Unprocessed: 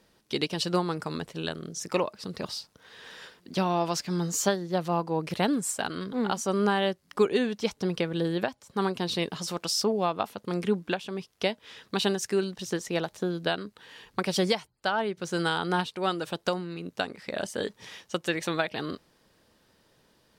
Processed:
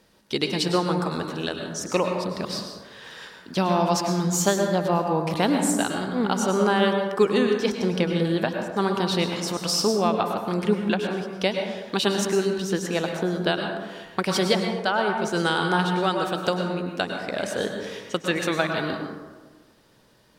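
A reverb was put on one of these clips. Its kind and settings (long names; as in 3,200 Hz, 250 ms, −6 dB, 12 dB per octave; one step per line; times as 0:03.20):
dense smooth reverb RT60 1.3 s, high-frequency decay 0.4×, pre-delay 90 ms, DRR 3 dB
level +3.5 dB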